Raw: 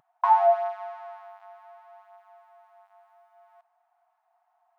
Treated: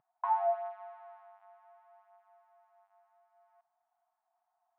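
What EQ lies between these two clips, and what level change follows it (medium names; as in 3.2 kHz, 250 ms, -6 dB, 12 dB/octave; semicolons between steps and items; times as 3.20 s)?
distance through air 380 m; -9.0 dB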